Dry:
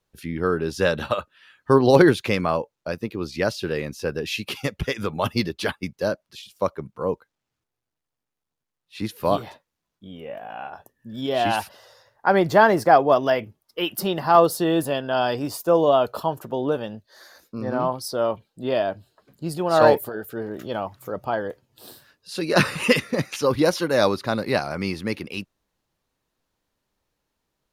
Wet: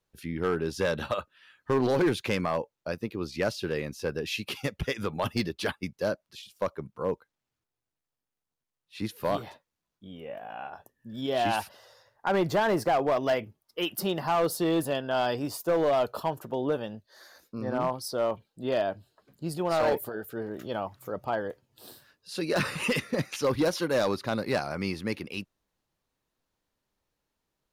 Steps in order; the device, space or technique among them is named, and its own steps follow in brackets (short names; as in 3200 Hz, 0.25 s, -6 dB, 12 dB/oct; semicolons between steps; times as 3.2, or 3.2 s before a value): limiter into clipper (limiter -9.5 dBFS, peak gain reduction 7.5 dB; hard clip -15 dBFS, distortion -16 dB); gain -4.5 dB